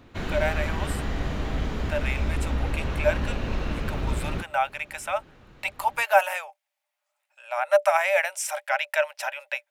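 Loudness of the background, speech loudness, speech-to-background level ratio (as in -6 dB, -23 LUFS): -30.0 LUFS, -26.5 LUFS, 3.5 dB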